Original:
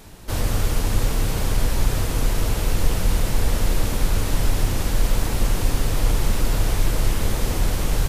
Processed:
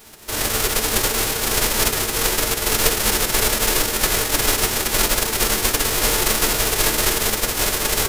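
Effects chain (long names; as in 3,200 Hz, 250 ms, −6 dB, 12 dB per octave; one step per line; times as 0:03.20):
spectral envelope flattened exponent 0.3
on a send: convolution reverb RT60 0.15 s, pre-delay 3 ms, DRR 4.5 dB
on the sum: level −3 dB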